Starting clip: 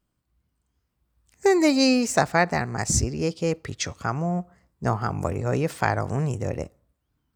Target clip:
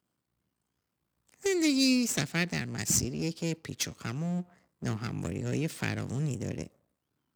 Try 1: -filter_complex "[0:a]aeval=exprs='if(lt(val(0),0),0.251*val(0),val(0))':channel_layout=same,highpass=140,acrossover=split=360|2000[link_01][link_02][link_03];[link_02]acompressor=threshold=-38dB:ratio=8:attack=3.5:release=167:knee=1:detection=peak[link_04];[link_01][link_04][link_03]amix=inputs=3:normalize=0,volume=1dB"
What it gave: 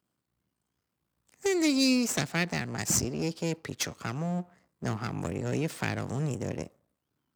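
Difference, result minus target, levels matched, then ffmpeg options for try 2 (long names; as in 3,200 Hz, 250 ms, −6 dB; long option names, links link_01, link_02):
downward compressor: peak gain reduction −10.5 dB
-filter_complex "[0:a]aeval=exprs='if(lt(val(0),0),0.251*val(0),val(0))':channel_layout=same,highpass=140,acrossover=split=360|2000[link_01][link_02][link_03];[link_02]acompressor=threshold=-50dB:ratio=8:attack=3.5:release=167:knee=1:detection=peak[link_04];[link_01][link_04][link_03]amix=inputs=3:normalize=0,volume=1dB"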